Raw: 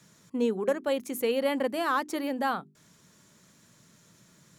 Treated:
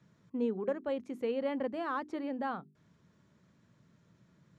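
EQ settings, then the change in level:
high-pass filter 55 Hz
head-to-tape spacing loss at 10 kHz 26 dB
low-shelf EQ 97 Hz +10.5 dB
−5.5 dB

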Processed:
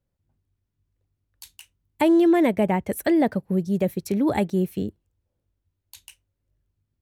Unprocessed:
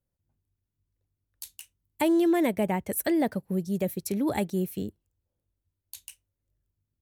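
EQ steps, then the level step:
high-shelf EQ 5,500 Hz −11.5 dB
+5.5 dB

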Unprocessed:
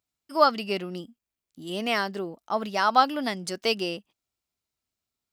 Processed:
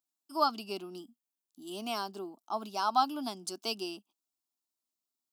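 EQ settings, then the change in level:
high-pass filter 180 Hz
high-shelf EQ 6,400 Hz +5.5 dB
phaser with its sweep stopped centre 510 Hz, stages 6
−5.5 dB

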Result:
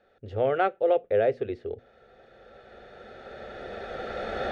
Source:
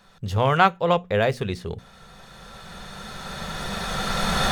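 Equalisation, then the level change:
high-pass filter 310 Hz 6 dB per octave
low-pass filter 1,200 Hz 12 dB per octave
phaser with its sweep stopped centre 420 Hz, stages 4
+2.5 dB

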